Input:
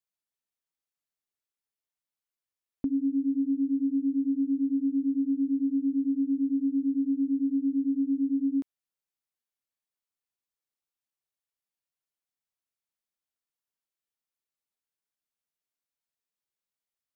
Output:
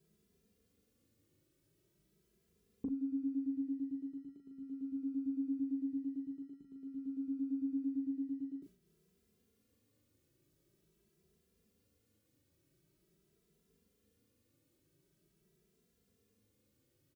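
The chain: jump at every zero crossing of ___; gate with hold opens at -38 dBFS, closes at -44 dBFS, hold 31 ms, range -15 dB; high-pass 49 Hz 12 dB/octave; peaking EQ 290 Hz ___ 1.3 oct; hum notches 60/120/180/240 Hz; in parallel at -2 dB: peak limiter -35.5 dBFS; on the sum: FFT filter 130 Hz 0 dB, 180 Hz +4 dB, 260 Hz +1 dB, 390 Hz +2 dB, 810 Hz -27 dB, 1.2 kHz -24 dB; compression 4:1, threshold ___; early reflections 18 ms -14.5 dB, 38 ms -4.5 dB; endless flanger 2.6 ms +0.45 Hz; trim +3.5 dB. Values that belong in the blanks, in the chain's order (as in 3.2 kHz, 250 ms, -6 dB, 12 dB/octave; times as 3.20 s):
-40.5 dBFS, -5 dB, -41 dBFS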